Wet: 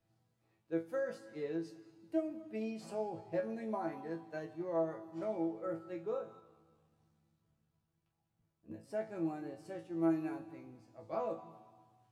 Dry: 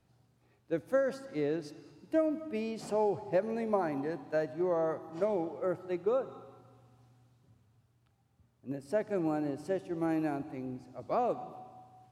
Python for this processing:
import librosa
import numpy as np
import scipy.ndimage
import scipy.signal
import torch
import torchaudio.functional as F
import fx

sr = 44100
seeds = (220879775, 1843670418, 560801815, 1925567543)

y = fx.ring_mod(x, sr, carrier_hz=36.0, at=(6.4, 8.82), fade=0.02)
y = fx.resonator_bank(y, sr, root=45, chord='fifth', decay_s=0.25)
y = y * 10.0 ** (4.0 / 20.0)